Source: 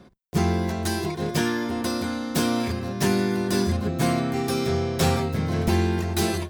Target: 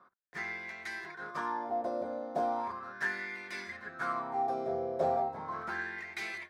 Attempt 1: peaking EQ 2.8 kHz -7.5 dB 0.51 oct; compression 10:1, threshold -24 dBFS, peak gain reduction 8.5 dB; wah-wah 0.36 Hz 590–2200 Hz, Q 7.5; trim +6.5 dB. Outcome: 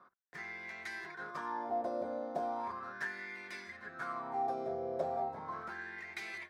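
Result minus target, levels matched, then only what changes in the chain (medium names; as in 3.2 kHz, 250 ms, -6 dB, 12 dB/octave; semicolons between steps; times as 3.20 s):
compression: peak gain reduction +8.5 dB
remove: compression 10:1, threshold -24 dBFS, peak gain reduction 8.5 dB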